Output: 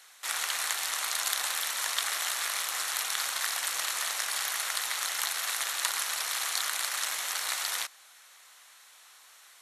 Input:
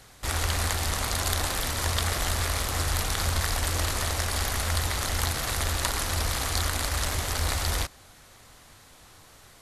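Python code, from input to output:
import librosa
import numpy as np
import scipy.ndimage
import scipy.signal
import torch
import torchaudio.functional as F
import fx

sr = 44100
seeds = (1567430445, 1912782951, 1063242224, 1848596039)

y = scipy.signal.sosfilt(scipy.signal.butter(2, 1200.0, 'highpass', fs=sr, output='sos'), x)
y = fx.notch(y, sr, hz=4800.0, q=14.0)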